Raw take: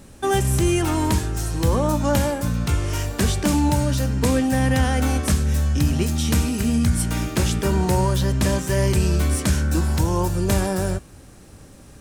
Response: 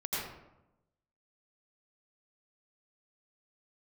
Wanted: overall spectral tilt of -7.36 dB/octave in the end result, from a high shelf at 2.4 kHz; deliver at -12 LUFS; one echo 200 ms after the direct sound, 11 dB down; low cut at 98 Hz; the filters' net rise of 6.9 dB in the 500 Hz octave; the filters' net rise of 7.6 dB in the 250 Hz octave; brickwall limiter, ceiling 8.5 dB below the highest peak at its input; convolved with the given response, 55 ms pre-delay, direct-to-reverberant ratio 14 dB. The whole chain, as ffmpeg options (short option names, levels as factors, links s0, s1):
-filter_complex "[0:a]highpass=98,equalizer=f=250:t=o:g=8,equalizer=f=500:t=o:g=6.5,highshelf=f=2400:g=-7,alimiter=limit=0.299:level=0:latency=1,aecho=1:1:200:0.282,asplit=2[s0][s1];[1:a]atrim=start_sample=2205,adelay=55[s2];[s1][s2]afir=irnorm=-1:irlink=0,volume=0.106[s3];[s0][s3]amix=inputs=2:normalize=0,volume=2.24"